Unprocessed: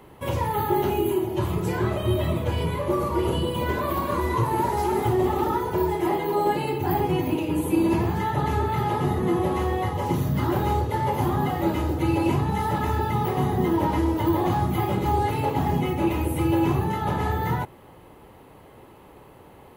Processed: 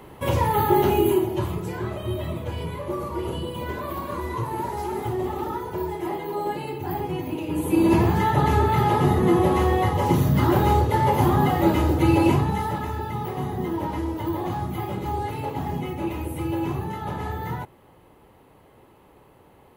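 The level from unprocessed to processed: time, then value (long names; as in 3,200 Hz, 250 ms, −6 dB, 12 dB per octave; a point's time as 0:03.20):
0:01.14 +4 dB
0:01.68 −5 dB
0:07.32 −5 dB
0:07.95 +4.5 dB
0:12.25 +4.5 dB
0:12.91 −5 dB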